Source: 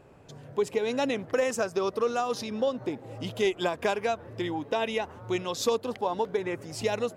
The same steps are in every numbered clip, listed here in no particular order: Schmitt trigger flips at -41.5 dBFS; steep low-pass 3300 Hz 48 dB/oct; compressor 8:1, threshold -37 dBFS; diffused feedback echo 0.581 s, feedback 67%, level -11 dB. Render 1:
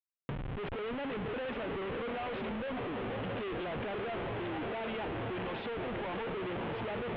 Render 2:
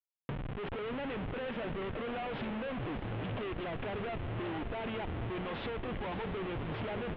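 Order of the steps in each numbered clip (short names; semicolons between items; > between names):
diffused feedback echo > Schmitt trigger > compressor > steep low-pass; Schmitt trigger > steep low-pass > compressor > diffused feedback echo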